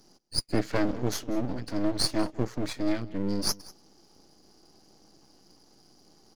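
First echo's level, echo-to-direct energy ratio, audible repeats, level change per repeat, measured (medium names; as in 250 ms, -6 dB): -21.0 dB, -21.0 dB, 1, no regular repeats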